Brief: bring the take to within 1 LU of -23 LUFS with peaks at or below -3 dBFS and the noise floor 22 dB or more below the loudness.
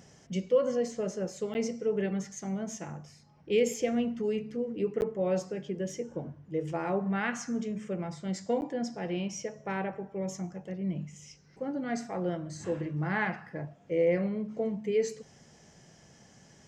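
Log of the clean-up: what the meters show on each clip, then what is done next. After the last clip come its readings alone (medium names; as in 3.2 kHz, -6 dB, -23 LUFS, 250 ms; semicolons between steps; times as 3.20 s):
dropouts 3; longest dropout 9.9 ms; loudness -32.5 LUFS; peak level -15.5 dBFS; loudness target -23.0 LUFS
-> interpolate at 1.54/5.01/8.61 s, 9.9 ms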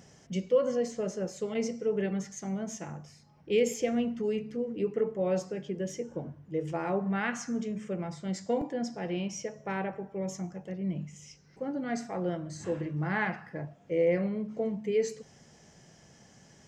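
dropouts 0; loudness -32.5 LUFS; peak level -15.5 dBFS; loudness target -23.0 LUFS
-> trim +9.5 dB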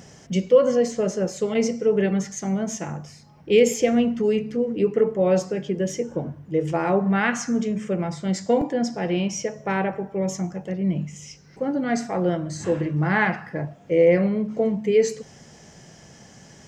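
loudness -23.0 LUFS; peak level -6.0 dBFS; noise floor -49 dBFS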